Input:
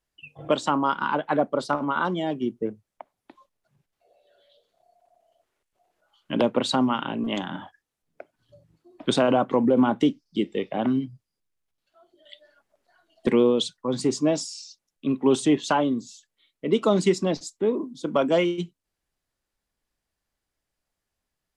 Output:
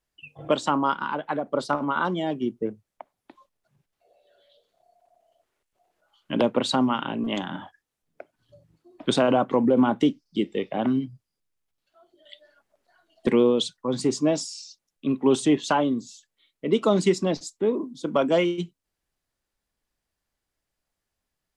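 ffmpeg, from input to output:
ffmpeg -i in.wav -filter_complex "[0:a]asplit=3[link_01][link_02][link_03];[link_01]afade=type=out:start_time=0.96:duration=0.02[link_04];[link_02]acompressor=threshold=-24dB:ratio=6,afade=type=in:start_time=0.96:duration=0.02,afade=type=out:start_time=1.45:duration=0.02[link_05];[link_03]afade=type=in:start_time=1.45:duration=0.02[link_06];[link_04][link_05][link_06]amix=inputs=3:normalize=0" out.wav

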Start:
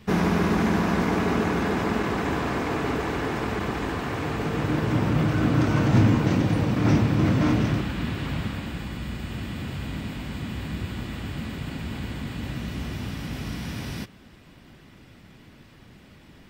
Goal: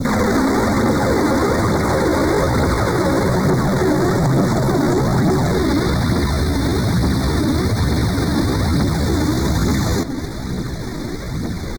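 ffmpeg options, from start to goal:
ffmpeg -i in.wav -filter_complex "[0:a]asoftclip=type=tanh:threshold=-24.5dB,bass=frequency=250:gain=3,treble=frequency=4000:gain=1,asplit=2[link_01][link_02];[link_02]adelay=200,lowpass=frequency=1800:poles=1,volume=-19.5dB,asplit=2[link_03][link_04];[link_04]adelay=200,lowpass=frequency=1800:poles=1,volume=0.53,asplit=2[link_05][link_06];[link_06]adelay=200,lowpass=frequency=1800:poles=1,volume=0.53,asplit=2[link_07][link_08];[link_08]adelay=200,lowpass=frequency=1800:poles=1,volume=0.53[link_09];[link_03][link_05][link_07][link_09]amix=inputs=4:normalize=0[link_10];[link_01][link_10]amix=inputs=2:normalize=0,acrusher=bits=7:mode=log:mix=0:aa=0.000001,acompressor=threshold=-30dB:ratio=12,aphaser=in_gain=1:out_gain=1:delay=4.5:decay=0.44:speed=0.81:type=triangular,asuperstop=centerf=2300:order=8:qfactor=2,atempo=1.4,acrossover=split=400|3300[link_11][link_12][link_13];[link_11]acompressor=threshold=-39dB:ratio=4[link_14];[link_12]acompressor=threshold=-40dB:ratio=4[link_15];[link_13]acompressor=threshold=-54dB:ratio=4[link_16];[link_14][link_15][link_16]amix=inputs=3:normalize=0,adynamicequalizer=threshold=0.00178:dfrequency=1800:dqfactor=0.87:tfrequency=1800:tqfactor=0.87:attack=5:release=100:ratio=0.375:range=2.5:mode=cutabove:tftype=bell,asetrate=53981,aresample=44100,atempo=0.816958,alimiter=level_in=29dB:limit=-1dB:release=50:level=0:latency=1,volume=-6dB" out.wav

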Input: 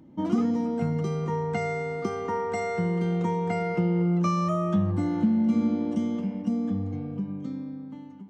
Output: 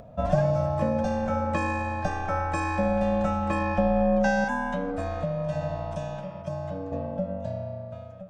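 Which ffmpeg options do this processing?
ffmpeg -i in.wav -filter_complex "[0:a]asettb=1/sr,asplit=3[link_01][link_02][link_03];[link_01]atrim=end=4.444[link_04];[link_02]atrim=start=4.44:end=6.92,asetpts=PTS-STARTPTS,afade=type=in:duration=0.004:curve=qsin,afade=type=out:start_time=2.476:duration=0.004:curve=qsin,equalizer=frequency=170:width_type=o:width=1.8:gain=-10[link_05];[link_03]atrim=start=6.916[link_06];[link_04][link_05]acrossfade=duration=0.004:curve1=hsin:curve2=qsin[link_07];[link_07][link_06]acrossfade=duration=0.004:curve1=qsin:curve2=hsin,aeval=exprs='val(0)*sin(2*PI*380*n/s)':channel_layout=same,acompressor=mode=upward:threshold=-46dB:ratio=2.5,volume=4.5dB" out.wav

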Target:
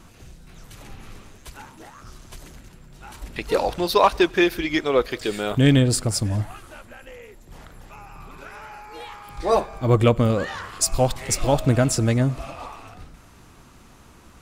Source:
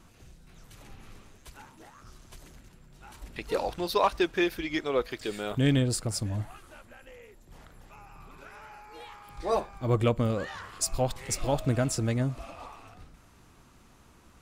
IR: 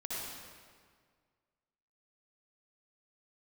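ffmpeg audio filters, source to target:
-filter_complex "[0:a]asplit=2[link_01][link_02];[1:a]atrim=start_sample=2205,atrim=end_sample=6174,adelay=97[link_03];[link_02][link_03]afir=irnorm=-1:irlink=0,volume=-25.5dB[link_04];[link_01][link_04]amix=inputs=2:normalize=0,volume=8dB"

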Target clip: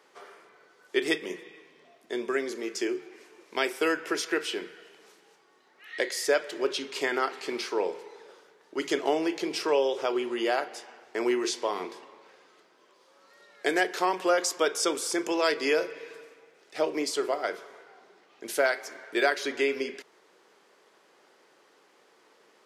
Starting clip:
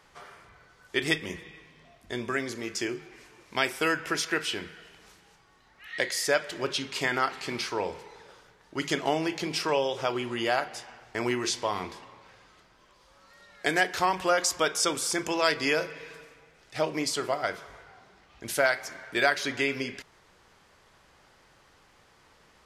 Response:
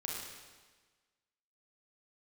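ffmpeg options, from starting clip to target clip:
-filter_complex "[0:a]equalizer=frequency=400:width_type=o:width=0.83:gain=8.5,acrossover=split=210|1200[link_01][link_02][link_03];[link_01]acrusher=bits=3:mix=0:aa=0.5[link_04];[link_04][link_02][link_03]amix=inputs=3:normalize=0,volume=-2.5dB"

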